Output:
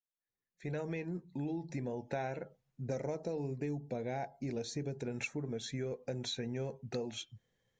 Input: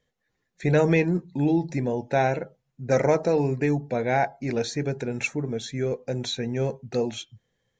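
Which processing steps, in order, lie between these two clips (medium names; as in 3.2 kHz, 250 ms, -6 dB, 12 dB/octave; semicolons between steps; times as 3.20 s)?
fade-in on the opening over 2.34 s; 2.87–5.05 s: peaking EQ 1.5 kHz -8.5 dB 1.8 oct; compression 5:1, threshold -31 dBFS, peak gain reduction 12 dB; trim -4.5 dB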